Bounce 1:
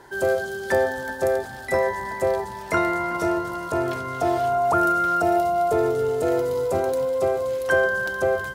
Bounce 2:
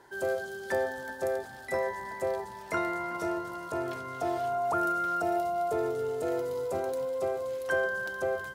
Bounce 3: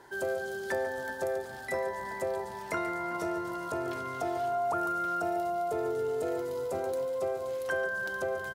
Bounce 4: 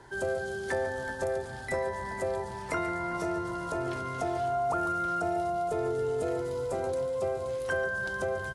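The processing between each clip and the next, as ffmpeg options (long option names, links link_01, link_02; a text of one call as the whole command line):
ffmpeg -i in.wav -af "lowshelf=frequency=110:gain=-7,volume=-8.5dB" out.wav
ffmpeg -i in.wav -af "acompressor=threshold=-35dB:ratio=2,aecho=1:1:143:0.237,volume=2.5dB" out.wav
ffmpeg -i in.wav -filter_complex "[0:a]acrossover=split=140|2400[link_01][link_02][link_03];[link_01]aeval=exprs='0.00841*sin(PI/2*2.82*val(0)/0.00841)':channel_layout=same[link_04];[link_04][link_02][link_03]amix=inputs=3:normalize=0,volume=1dB" -ar 24000 -c:a aac -b:a 48k out.aac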